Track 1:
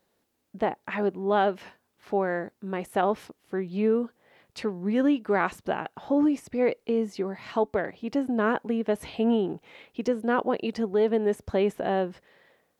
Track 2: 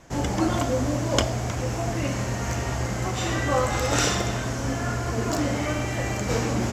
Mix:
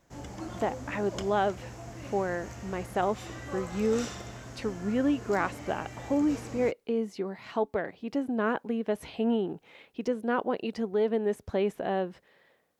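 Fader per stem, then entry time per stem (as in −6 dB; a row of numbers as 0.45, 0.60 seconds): −3.5, −16.0 decibels; 0.00, 0.00 seconds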